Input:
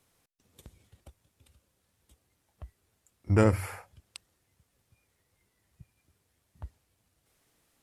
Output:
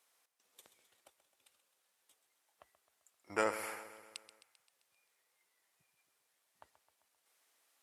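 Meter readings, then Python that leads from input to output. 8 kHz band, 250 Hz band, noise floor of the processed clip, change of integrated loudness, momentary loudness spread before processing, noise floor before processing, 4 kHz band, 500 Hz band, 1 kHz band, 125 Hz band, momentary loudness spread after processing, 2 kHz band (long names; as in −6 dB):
−2.0 dB, −18.0 dB, −80 dBFS, −13.0 dB, 13 LU, −76 dBFS, −2.0 dB, −9.0 dB, −3.0 dB, −34.0 dB, 18 LU, −2.5 dB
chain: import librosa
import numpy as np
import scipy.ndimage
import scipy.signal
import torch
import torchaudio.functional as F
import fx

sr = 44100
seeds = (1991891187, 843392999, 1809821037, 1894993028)

y = scipy.signal.sosfilt(scipy.signal.butter(2, 680.0, 'highpass', fs=sr, output='sos'), x)
y = fx.echo_feedback(y, sr, ms=131, feedback_pct=60, wet_db=-13)
y = y * librosa.db_to_amplitude(-2.5)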